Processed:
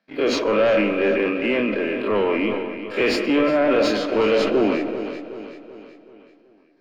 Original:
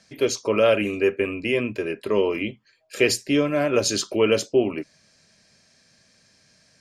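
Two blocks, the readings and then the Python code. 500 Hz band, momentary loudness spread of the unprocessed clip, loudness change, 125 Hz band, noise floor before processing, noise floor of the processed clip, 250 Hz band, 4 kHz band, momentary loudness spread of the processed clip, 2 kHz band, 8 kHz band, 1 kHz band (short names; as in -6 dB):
+2.5 dB, 10 LU, +2.0 dB, -3.0 dB, -60 dBFS, -55 dBFS, +4.0 dB, -0.5 dB, 12 LU, +3.0 dB, under -10 dB, +5.5 dB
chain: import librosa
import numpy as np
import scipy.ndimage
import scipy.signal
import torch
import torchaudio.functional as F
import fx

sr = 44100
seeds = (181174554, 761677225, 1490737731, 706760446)

p1 = fx.spec_dilate(x, sr, span_ms=60)
p2 = scipy.signal.sosfilt(scipy.signal.butter(4, 220.0, 'highpass', fs=sr, output='sos'), p1)
p3 = fx.peak_eq(p2, sr, hz=390.0, db=-7.0, octaves=0.39)
p4 = fx.leveller(p3, sr, passes=3)
p5 = fx.air_absorb(p4, sr, metres=400.0)
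p6 = p5 + fx.echo_feedback(p5, sr, ms=380, feedback_pct=49, wet_db=-11, dry=0)
p7 = fx.rev_freeverb(p6, sr, rt60_s=1.2, hf_ratio=0.25, predelay_ms=110, drr_db=11.5)
p8 = fx.sustainer(p7, sr, db_per_s=36.0)
y = p8 * 10.0 ** (-6.0 / 20.0)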